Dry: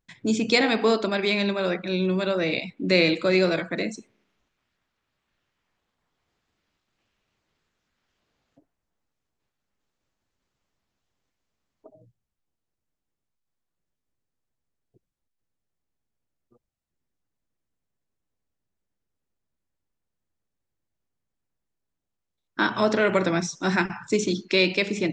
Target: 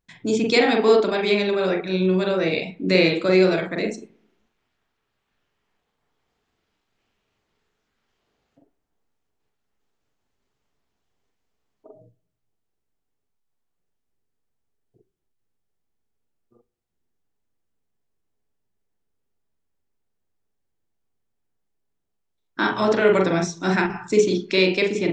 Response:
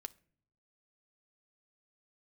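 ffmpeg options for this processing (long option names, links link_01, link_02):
-filter_complex "[0:a]asplit=2[link_01][link_02];[link_02]equalizer=frequency=400:width_type=o:width=0.33:gain=11,equalizer=frequency=800:width_type=o:width=0.33:gain=7,equalizer=frequency=3150:width_type=o:width=0.33:gain=7[link_03];[1:a]atrim=start_sample=2205,lowpass=2400,adelay=43[link_04];[link_03][link_04]afir=irnorm=-1:irlink=0,volume=1dB[link_05];[link_01][link_05]amix=inputs=2:normalize=0"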